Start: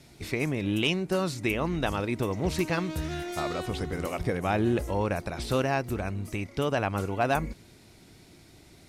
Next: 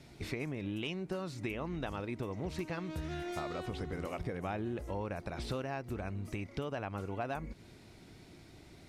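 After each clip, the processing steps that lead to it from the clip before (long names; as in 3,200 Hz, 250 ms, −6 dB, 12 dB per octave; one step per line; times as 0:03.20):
high-shelf EQ 5,800 Hz −9.5 dB
downward compressor 4 to 1, threshold −35 dBFS, peak gain reduction 12 dB
level −1 dB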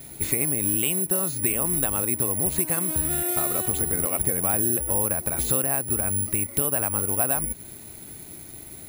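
bad sample-rate conversion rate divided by 4×, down filtered, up zero stuff
level +8 dB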